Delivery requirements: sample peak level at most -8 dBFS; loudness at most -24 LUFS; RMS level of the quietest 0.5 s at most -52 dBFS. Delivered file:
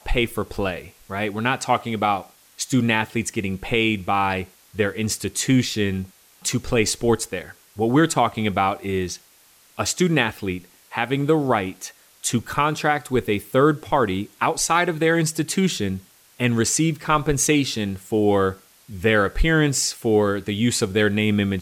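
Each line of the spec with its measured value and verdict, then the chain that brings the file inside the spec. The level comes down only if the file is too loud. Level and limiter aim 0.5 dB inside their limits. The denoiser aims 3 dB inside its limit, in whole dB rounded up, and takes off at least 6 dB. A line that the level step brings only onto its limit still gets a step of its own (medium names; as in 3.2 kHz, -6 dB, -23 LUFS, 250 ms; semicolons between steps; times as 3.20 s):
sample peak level -5.5 dBFS: fail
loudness -21.5 LUFS: fail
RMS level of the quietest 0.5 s -54 dBFS: pass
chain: trim -3 dB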